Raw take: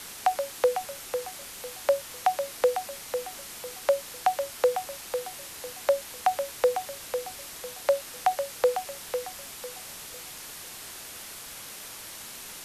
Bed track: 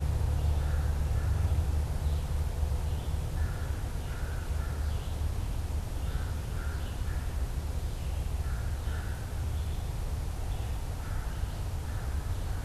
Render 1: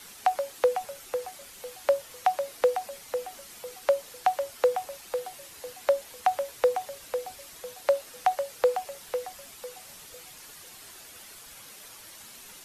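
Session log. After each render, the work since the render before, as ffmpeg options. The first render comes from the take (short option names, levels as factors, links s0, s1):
-af "afftdn=nr=8:nf=-43"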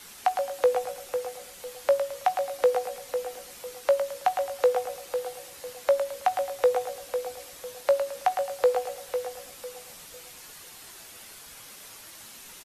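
-filter_complex "[0:a]asplit=2[s0][s1];[s1]adelay=18,volume=0.251[s2];[s0][s2]amix=inputs=2:normalize=0,aecho=1:1:108|216|324|432:0.398|0.135|0.046|0.0156"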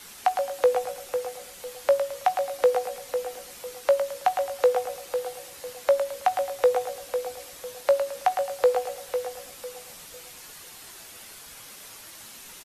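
-af "volume=1.19"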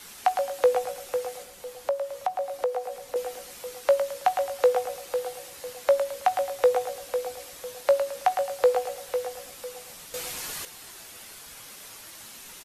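-filter_complex "[0:a]asettb=1/sr,asplit=3[s0][s1][s2];[s0]atrim=end=1.424[s3];[s1]atrim=start=1.42:end=3.16,asetpts=PTS-STARTPTS,afade=t=in:d=0.004:c=qsin,afade=t=out:st=1.736:d=0.004:c=qsin,acrossover=split=400|1100[s4][s5][s6];[s4]acompressor=threshold=0.00501:ratio=4[s7];[s5]acompressor=threshold=0.0562:ratio=4[s8];[s6]acompressor=threshold=0.00447:ratio=4[s9];[s7][s8][s9]amix=inputs=3:normalize=0[s10];[s2]atrim=start=3.156[s11];[s3][s10]acrossfade=d=0.004:c1=hsin:c2=qsin[s12];[s12][s11]acrossfade=d=0.004:c1=qsin:c2=hsin,asplit=3[s13][s14][s15];[s13]atrim=end=10.142[s16];[s14]atrim=start=10.138:end=10.652,asetpts=PTS-STARTPTS,volume=2.99[s17];[s15]atrim=start=10.648[s18];[s16][s17]acrossfade=d=0.004:c1=hsin:c2=hsin[s19];[s19][s18]acrossfade=d=0.004:c1=hsin:c2=hsin"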